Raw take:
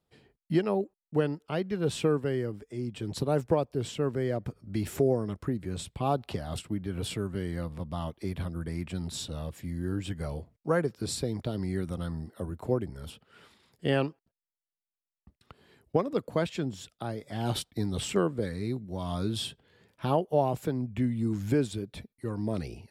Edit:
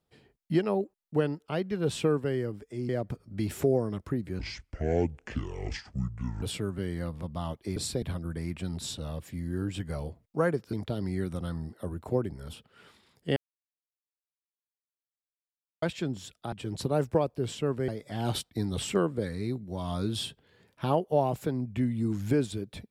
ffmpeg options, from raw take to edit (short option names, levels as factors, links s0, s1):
-filter_complex "[0:a]asplit=11[s0][s1][s2][s3][s4][s5][s6][s7][s8][s9][s10];[s0]atrim=end=2.892[s11];[s1]atrim=start=4.248:end=5.754[s12];[s2]atrim=start=5.75:end=6.99,asetpts=PTS-STARTPTS,asetrate=26901,aresample=44100[s13];[s3]atrim=start=6.986:end=8.332[s14];[s4]atrim=start=11.038:end=11.302[s15];[s5]atrim=start=8.328:end=11.042[s16];[s6]atrim=start=11.298:end=13.93,asetpts=PTS-STARTPTS,afade=t=out:st=2.628:d=0.004:c=hsin[s17];[s7]atrim=start=13.93:end=16.39,asetpts=PTS-STARTPTS,volume=0[s18];[s8]atrim=start=16.39:end=17.092,asetpts=PTS-STARTPTS,afade=t=in:d=0.004:c=hsin[s19];[s9]atrim=start=2.888:end=4.252[s20];[s10]atrim=start=17.088[s21];[s11][s12]acrossfade=d=0.004:c1=hsin:c2=hsin[s22];[s22][s13]acrossfade=d=0.004:c1=hsin:c2=hsin[s23];[s23][s14]acrossfade=d=0.004:c1=hsin:c2=hsin[s24];[s24][s15]acrossfade=d=0.004:c1=hsin:c2=hsin[s25];[s25][s16]acrossfade=d=0.004:c1=hsin:c2=hsin[s26];[s17][s18][s19]concat=n=3:v=0:a=1[s27];[s26][s27]acrossfade=d=0.004:c1=hsin:c2=hsin[s28];[s28][s20]acrossfade=d=0.004:c1=hsin:c2=hsin[s29];[s29][s21]acrossfade=d=0.004:c1=hsin:c2=hsin"